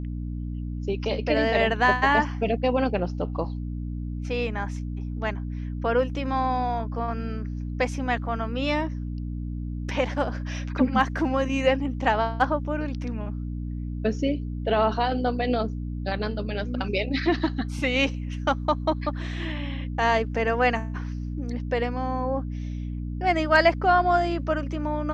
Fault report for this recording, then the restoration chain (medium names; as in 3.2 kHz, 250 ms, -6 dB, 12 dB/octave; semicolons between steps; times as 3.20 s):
hum 60 Hz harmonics 5 -31 dBFS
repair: de-hum 60 Hz, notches 5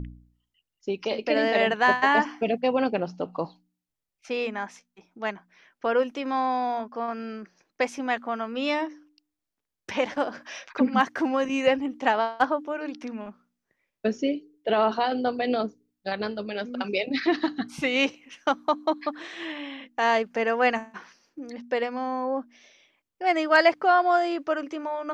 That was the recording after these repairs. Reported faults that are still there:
nothing left